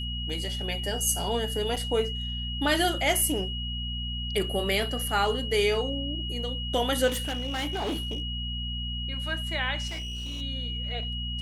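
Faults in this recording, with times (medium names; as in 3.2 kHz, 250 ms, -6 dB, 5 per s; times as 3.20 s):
hum 60 Hz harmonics 4 -34 dBFS
whine 2.9 kHz -34 dBFS
1.76–1.77 s: dropout 6.1 ms
7.07–8.22 s: clipped -26.5 dBFS
9.87–10.42 s: clipped -31.5 dBFS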